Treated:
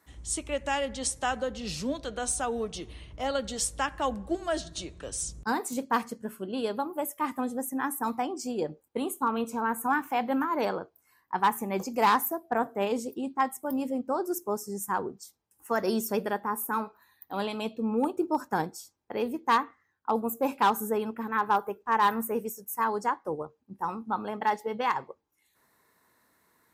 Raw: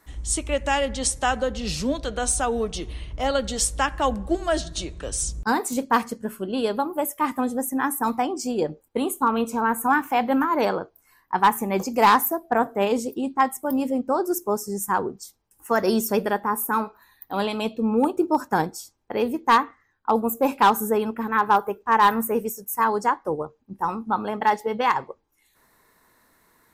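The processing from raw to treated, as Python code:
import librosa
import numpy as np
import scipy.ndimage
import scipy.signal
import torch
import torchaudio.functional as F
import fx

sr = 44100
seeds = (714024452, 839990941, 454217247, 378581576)

y = scipy.signal.sosfilt(scipy.signal.butter(2, 73.0, 'highpass', fs=sr, output='sos'), x)
y = y * 10.0 ** (-6.5 / 20.0)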